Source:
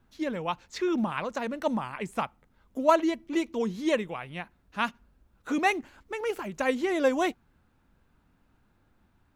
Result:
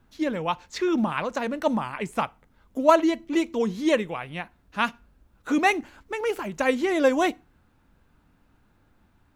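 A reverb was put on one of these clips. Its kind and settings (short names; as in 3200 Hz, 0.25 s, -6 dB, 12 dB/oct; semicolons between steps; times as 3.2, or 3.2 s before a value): FDN reverb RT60 0.31 s, low-frequency decay 0.95×, high-frequency decay 0.9×, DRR 18.5 dB; gain +4 dB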